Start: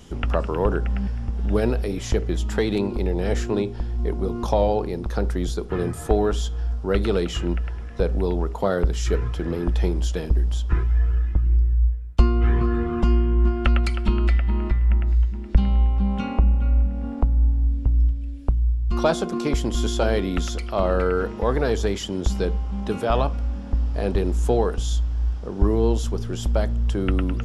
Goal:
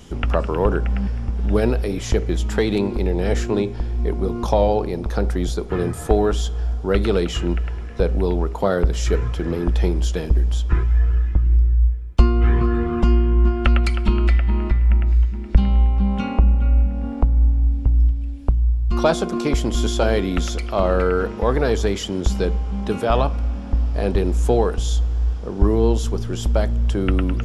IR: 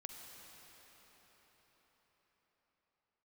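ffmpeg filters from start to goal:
-filter_complex "[0:a]asplit=2[s0][s1];[s1]equalizer=f=2300:t=o:w=0.24:g=10.5[s2];[1:a]atrim=start_sample=2205[s3];[s2][s3]afir=irnorm=-1:irlink=0,volume=0.188[s4];[s0][s4]amix=inputs=2:normalize=0,volume=1.26"

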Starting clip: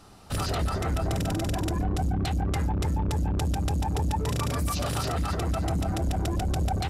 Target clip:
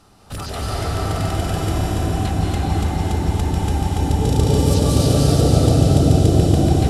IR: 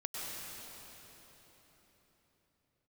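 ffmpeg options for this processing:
-filter_complex "[0:a]asettb=1/sr,asplit=3[s0][s1][s2];[s0]atrim=end=4.024[s3];[s1]atrim=start=4.02:end=6.35,asetpts=PTS-STARTPTS,afade=t=in:d=0.004:c=qsin,afade=t=out:st=2.326:d=0.004:c=qsin,equalizer=f=125:t=o:w=1:g=9,equalizer=f=250:t=o:w=1:g=6,equalizer=f=500:t=o:w=1:g=11,equalizer=f=1000:t=o:w=1:g=-9,equalizer=f=2000:t=o:w=1:g=-6,equalizer=f=4000:t=o:w=1:g=6,equalizer=f=8000:t=o:w=1:g=4[s4];[s2]atrim=start=6.346[s5];[s3][s4]acrossfade=d=0.004:c1=hsin:c2=qsin[s6];[s6][s5]acrossfade=d=0.004:c1=qsin:c2=hsin[s7];[1:a]atrim=start_sample=2205,asetrate=26901,aresample=44100[s8];[s7][s8]afir=irnorm=-1:irlink=0,volume=1.12"

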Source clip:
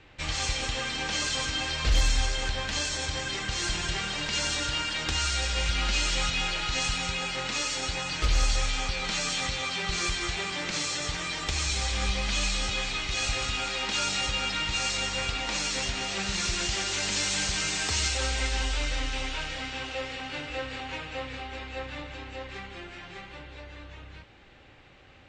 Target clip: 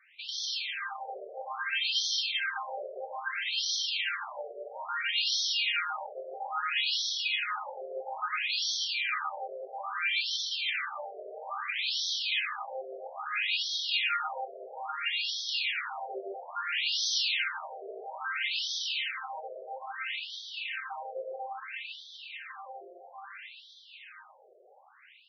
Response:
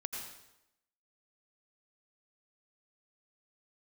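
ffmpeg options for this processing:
-filter_complex "[1:a]atrim=start_sample=2205[s0];[0:a][s0]afir=irnorm=-1:irlink=0,dynaudnorm=f=810:g=3:m=1.58,afftfilt=real='re*between(b*sr/1024,510*pow(4500/510,0.5+0.5*sin(2*PI*0.6*pts/sr))/1.41,510*pow(4500/510,0.5+0.5*sin(2*PI*0.6*pts/sr))*1.41)':imag='im*between(b*sr/1024,510*pow(4500/510,0.5+0.5*sin(2*PI*0.6*pts/sr))/1.41,510*pow(4500/510,0.5+0.5*sin(2*PI*0.6*pts/sr))*1.41)':win_size=1024:overlap=0.75"

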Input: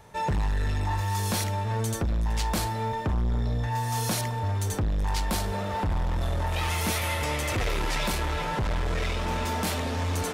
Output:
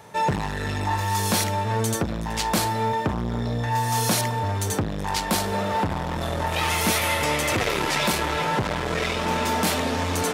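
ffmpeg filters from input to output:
-af "highpass=130,volume=2.11"

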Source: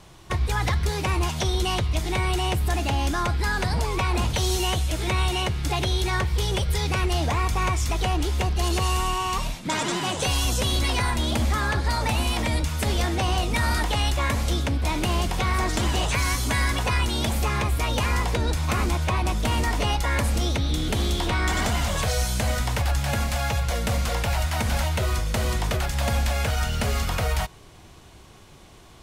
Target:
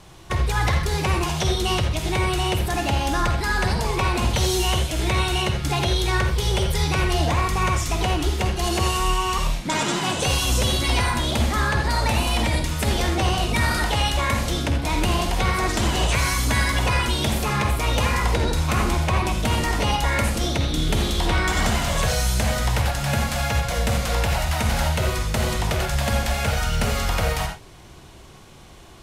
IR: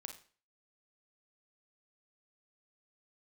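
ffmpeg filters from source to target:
-filter_complex "[1:a]atrim=start_sample=2205,atrim=end_sample=3969,asetrate=28665,aresample=44100[s0];[0:a][s0]afir=irnorm=-1:irlink=0,volume=1.78"

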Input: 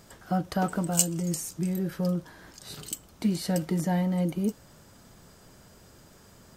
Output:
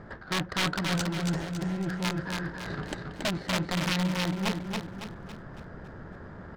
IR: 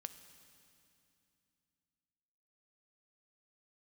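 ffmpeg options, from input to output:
-filter_complex "[0:a]asplit=2[s0][s1];[s1]acrusher=samples=37:mix=1:aa=0.000001,volume=0.299[s2];[s0][s2]amix=inputs=2:normalize=0,highshelf=f=2200:t=q:w=3:g=-7,aeval=exprs='(mod(7.94*val(0)+1,2)-1)/7.94':c=same,adynamicsmooth=sensitivity=5.5:basefreq=1300,asoftclip=type=tanh:threshold=0.0668,areverse,acompressor=threshold=0.0126:ratio=6,areverse,equalizer=f=3700:w=0.64:g=10.5,aecho=1:1:278|556|834|1112|1390|1668:0.631|0.284|0.128|0.0575|0.0259|0.0116,volume=2.37"

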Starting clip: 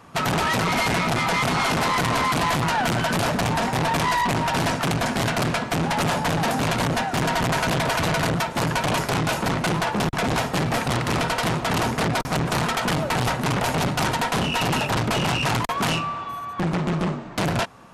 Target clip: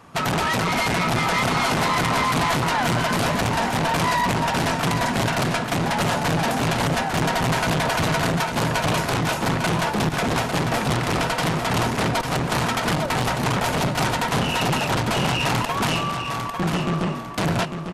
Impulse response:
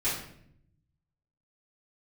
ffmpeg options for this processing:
-af "aecho=1:1:849|1698|2547|3396:0.447|0.13|0.0376|0.0109"

